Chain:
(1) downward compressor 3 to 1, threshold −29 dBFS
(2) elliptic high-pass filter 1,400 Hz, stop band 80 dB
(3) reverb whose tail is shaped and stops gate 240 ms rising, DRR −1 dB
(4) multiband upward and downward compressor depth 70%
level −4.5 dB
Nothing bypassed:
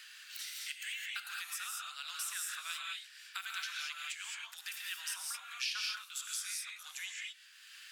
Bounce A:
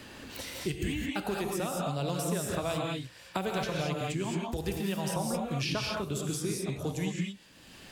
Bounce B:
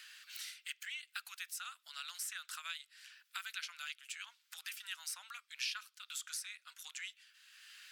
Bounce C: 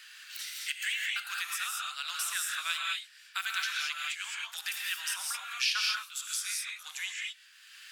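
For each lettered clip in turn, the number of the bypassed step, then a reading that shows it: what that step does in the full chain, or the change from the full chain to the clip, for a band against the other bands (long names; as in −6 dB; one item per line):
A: 2, 1 kHz band +11.5 dB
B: 3, change in momentary loudness spread +2 LU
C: 1, average gain reduction 6.0 dB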